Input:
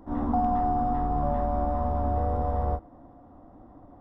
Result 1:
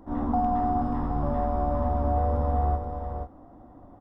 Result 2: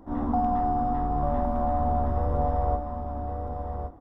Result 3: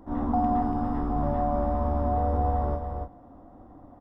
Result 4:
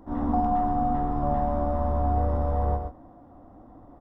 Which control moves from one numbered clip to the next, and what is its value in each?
delay, time: 480 ms, 1115 ms, 285 ms, 124 ms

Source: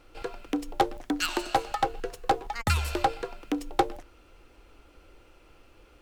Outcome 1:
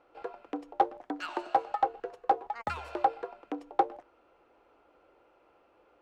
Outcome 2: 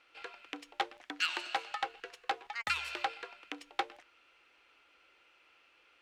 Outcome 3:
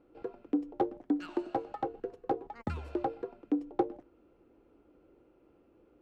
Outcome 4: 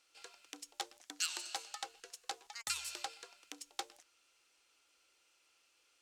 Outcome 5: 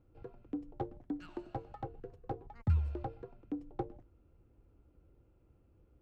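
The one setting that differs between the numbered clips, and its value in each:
band-pass filter, frequency: 740 Hz, 2.4 kHz, 290 Hz, 6.9 kHz, 110 Hz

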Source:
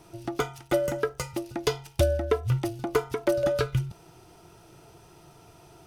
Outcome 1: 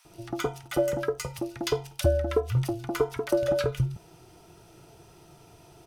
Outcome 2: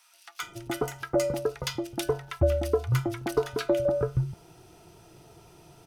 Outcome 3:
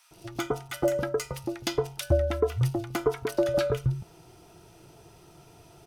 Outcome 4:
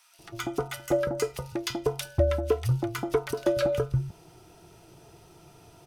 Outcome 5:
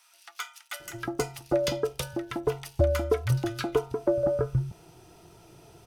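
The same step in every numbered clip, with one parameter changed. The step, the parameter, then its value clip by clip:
bands offset in time, time: 50 ms, 420 ms, 110 ms, 190 ms, 800 ms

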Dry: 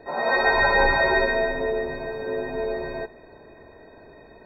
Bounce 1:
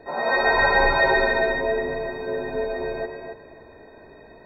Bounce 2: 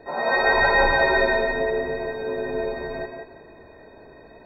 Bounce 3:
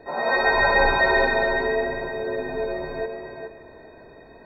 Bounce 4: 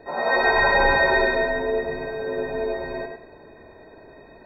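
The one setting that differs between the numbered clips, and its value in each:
tape echo, time: 275 ms, 178 ms, 418 ms, 103 ms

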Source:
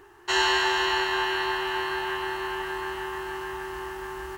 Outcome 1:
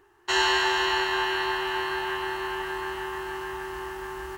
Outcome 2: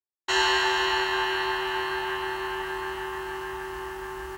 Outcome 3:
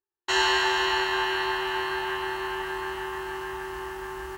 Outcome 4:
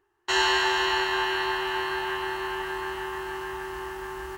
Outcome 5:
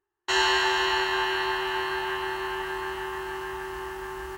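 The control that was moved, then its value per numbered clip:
gate, range: -8 dB, -57 dB, -45 dB, -20 dB, -32 dB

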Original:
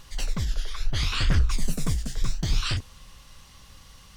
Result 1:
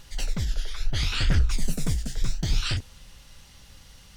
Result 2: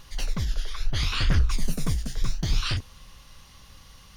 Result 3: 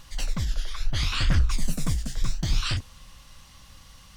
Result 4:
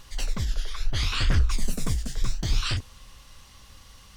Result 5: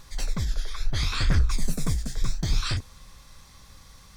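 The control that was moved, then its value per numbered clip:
band-stop, frequency: 1.1 kHz, 7.8 kHz, 420 Hz, 160 Hz, 2.9 kHz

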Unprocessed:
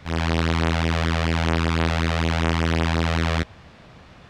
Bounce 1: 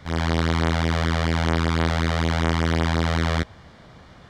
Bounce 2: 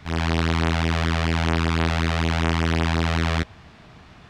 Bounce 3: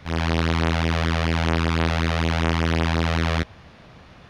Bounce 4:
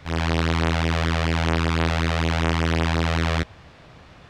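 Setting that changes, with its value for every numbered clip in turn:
band-stop, frequency: 2.6 kHz, 530 Hz, 7.7 kHz, 210 Hz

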